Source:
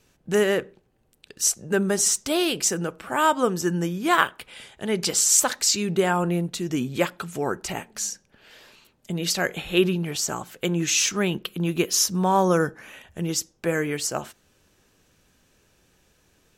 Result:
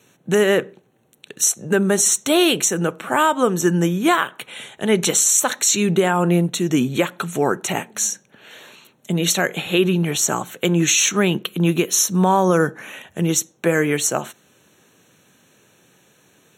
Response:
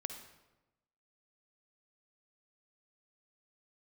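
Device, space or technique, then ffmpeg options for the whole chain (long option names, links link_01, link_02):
PA system with an anti-feedback notch: -af "highpass=frequency=120:width=0.5412,highpass=frequency=120:width=1.3066,asuperstop=centerf=4900:order=8:qfactor=4.1,alimiter=limit=-14dB:level=0:latency=1:release=205,volume=8dB"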